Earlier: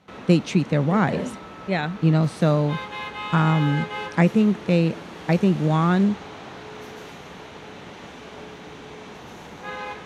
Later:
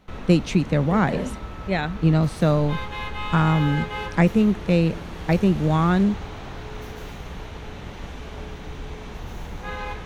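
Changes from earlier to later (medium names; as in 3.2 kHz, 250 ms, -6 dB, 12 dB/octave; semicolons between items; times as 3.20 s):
background: remove high-pass 190 Hz 12 dB/octave; master: remove low-pass 11 kHz 12 dB/octave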